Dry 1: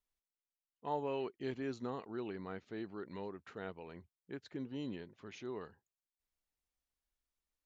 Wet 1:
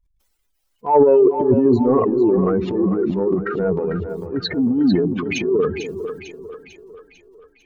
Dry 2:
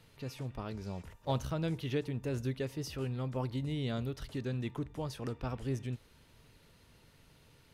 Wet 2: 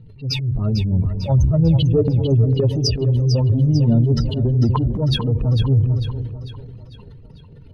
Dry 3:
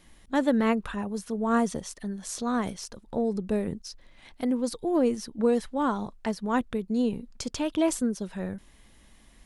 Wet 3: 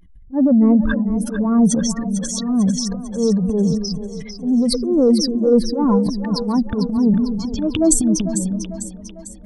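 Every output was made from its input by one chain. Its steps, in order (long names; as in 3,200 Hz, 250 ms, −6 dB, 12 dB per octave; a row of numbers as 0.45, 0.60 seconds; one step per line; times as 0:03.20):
expanding power law on the bin magnitudes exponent 2.7
dynamic equaliser 100 Hz, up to +6 dB, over −57 dBFS, Q 4.8
transient designer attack −11 dB, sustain +9 dB
echo with a time of its own for lows and highs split 420 Hz, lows 246 ms, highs 448 ms, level −9 dB
loudness normalisation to −18 LKFS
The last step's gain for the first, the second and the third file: +26.5, +20.0, +11.5 decibels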